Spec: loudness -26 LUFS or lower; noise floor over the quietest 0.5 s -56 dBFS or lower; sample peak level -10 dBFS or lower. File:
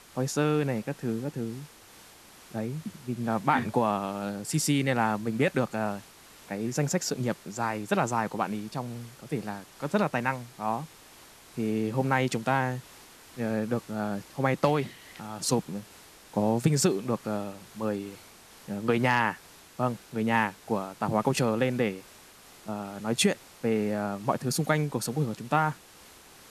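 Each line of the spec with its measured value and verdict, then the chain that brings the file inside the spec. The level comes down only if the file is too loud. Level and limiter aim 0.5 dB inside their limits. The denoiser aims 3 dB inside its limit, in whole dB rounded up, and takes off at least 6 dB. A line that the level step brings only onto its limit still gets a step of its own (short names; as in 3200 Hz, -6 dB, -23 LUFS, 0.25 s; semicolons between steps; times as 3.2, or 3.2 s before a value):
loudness -29.0 LUFS: OK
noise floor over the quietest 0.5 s -52 dBFS: fail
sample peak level -9.0 dBFS: fail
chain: denoiser 7 dB, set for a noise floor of -52 dBFS; limiter -10.5 dBFS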